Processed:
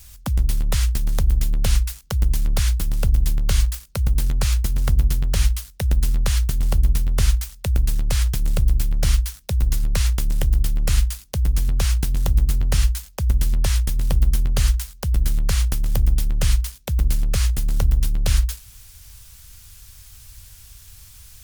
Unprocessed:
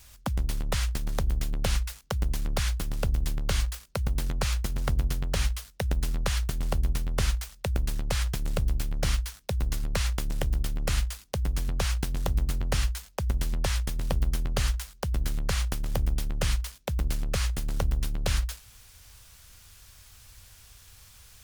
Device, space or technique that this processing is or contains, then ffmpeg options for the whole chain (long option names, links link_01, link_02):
smiley-face EQ: -af "lowshelf=frequency=130:gain=7.5,equalizer=frequency=670:width_type=o:width=2.8:gain=-3.5,highshelf=frequency=6800:gain=7,volume=3dB"